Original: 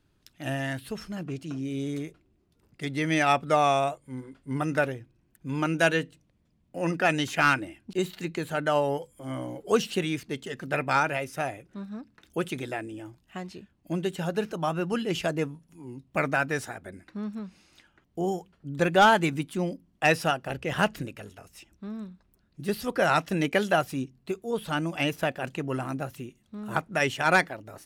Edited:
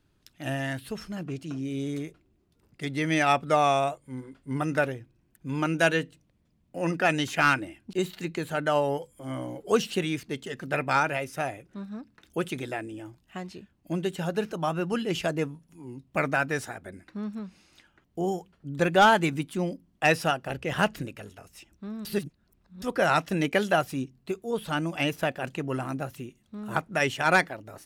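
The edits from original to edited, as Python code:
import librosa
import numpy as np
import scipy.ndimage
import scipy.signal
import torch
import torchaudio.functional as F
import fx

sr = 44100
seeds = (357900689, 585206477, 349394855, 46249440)

y = fx.edit(x, sr, fx.reverse_span(start_s=22.05, length_s=0.77), tone=tone)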